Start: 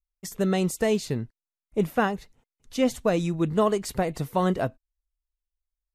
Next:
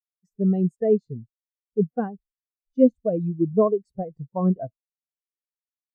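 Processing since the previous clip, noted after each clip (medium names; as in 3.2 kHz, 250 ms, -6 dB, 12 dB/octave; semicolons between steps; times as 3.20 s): spectral contrast expander 2.5:1; trim +6 dB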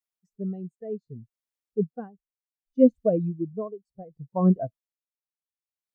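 logarithmic tremolo 0.66 Hz, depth 18 dB; trim +2 dB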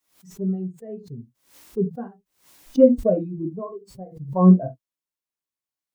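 small resonant body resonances 290/1000 Hz, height 6 dB; on a send at -2 dB: reverberation, pre-delay 3 ms; on the sum: swell ahead of each attack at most 130 dB/s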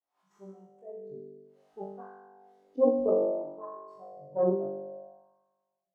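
flutter echo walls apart 3.5 m, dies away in 1.4 s; Chebyshev shaper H 2 -6 dB, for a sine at -1.5 dBFS; wah-wah 0.59 Hz 400–1100 Hz, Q 3.2; trim -5.5 dB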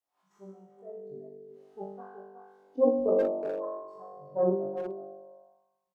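speakerphone echo 370 ms, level -8 dB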